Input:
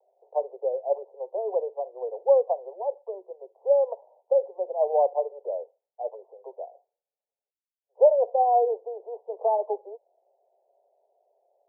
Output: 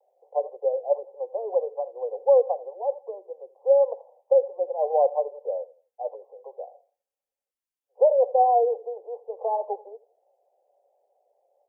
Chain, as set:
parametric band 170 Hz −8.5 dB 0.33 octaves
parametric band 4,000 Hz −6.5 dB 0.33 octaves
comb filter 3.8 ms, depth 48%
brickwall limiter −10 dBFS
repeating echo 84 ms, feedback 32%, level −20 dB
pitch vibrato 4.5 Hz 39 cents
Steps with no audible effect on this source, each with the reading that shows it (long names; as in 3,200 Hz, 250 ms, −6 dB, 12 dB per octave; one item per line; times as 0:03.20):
parametric band 170 Hz: nothing at its input below 360 Hz
parametric band 4,000 Hz: nothing at its input above 960 Hz